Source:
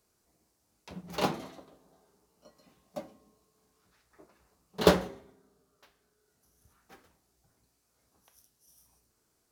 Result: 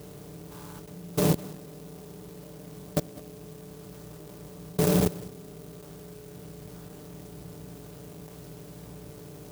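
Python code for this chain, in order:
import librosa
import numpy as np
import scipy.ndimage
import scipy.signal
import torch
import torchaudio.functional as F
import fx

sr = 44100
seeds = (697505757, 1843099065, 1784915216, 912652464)

p1 = fx.bin_compress(x, sr, power=0.4)
p2 = p1 + 0.72 * np.pad(p1, (int(6.8 * sr / 1000.0), 0))[:len(p1)]
p3 = fx.level_steps(p2, sr, step_db=23)
p4 = fx.low_shelf(p3, sr, hz=180.0, db=9.5)
p5 = p4 + fx.echo_single(p4, sr, ms=202, db=-18.5, dry=0)
p6 = fx.spec_box(p5, sr, start_s=0.52, length_s=0.28, low_hz=800.0, high_hz=1700.0, gain_db=11)
p7 = scipy.signal.sosfilt(scipy.signal.butter(2, 48.0, 'highpass', fs=sr, output='sos'), p6)
p8 = fx.low_shelf(p7, sr, hz=380.0, db=7.5)
p9 = fx.clock_jitter(p8, sr, seeds[0], jitter_ms=0.12)
y = F.gain(torch.from_numpy(p9), -5.0).numpy()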